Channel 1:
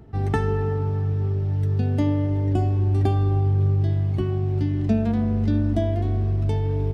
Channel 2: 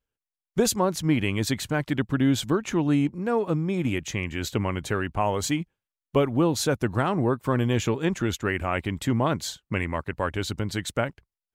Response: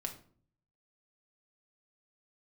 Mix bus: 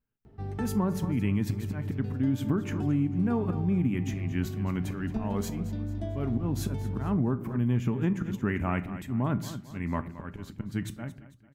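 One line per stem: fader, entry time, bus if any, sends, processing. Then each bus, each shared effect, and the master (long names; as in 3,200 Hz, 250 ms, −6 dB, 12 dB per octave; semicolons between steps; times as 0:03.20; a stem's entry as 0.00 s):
−4.0 dB, 0.25 s, send −15.5 dB, echo send −14 dB, automatic ducking −7 dB, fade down 0.30 s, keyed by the second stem
+0.5 dB, 0.00 s, send −4.5 dB, echo send −12.5 dB, octave-band graphic EQ 125/250/500/4,000/8,000 Hz +8/+7/−6/−11/−9 dB; volume swells 288 ms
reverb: on, RT60 0.50 s, pre-delay 5 ms
echo: repeating echo 223 ms, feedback 42%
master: tuned comb filter 200 Hz, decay 0.17 s, harmonics all, mix 50%; downward compressor 6 to 1, threshold −23 dBFS, peak gain reduction 10 dB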